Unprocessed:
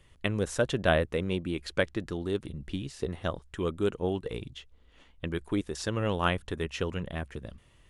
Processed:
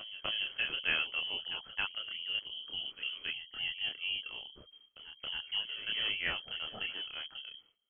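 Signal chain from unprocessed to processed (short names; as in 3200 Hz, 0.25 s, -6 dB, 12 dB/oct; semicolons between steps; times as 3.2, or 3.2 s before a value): gate with hold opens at -48 dBFS; chorus voices 2, 0.84 Hz, delay 28 ms, depth 1.2 ms; inverted band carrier 3200 Hz; reverse echo 0.273 s -11 dB; gain -4.5 dB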